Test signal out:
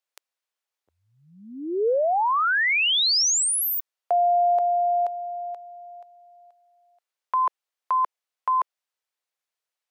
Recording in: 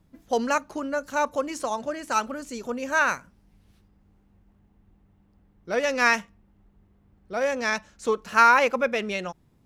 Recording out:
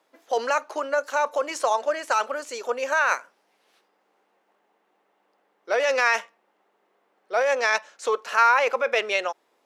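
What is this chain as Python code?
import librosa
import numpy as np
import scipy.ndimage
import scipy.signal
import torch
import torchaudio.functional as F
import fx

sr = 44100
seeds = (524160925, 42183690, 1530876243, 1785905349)

p1 = scipy.signal.sosfilt(scipy.signal.butter(4, 460.0, 'highpass', fs=sr, output='sos'), x)
p2 = fx.high_shelf(p1, sr, hz=7700.0, db=-9.0)
p3 = fx.over_compress(p2, sr, threshold_db=-27.0, ratio=-0.5)
p4 = p2 + (p3 * librosa.db_to_amplitude(0.5))
y = p4 * librosa.db_to_amplitude(-1.5)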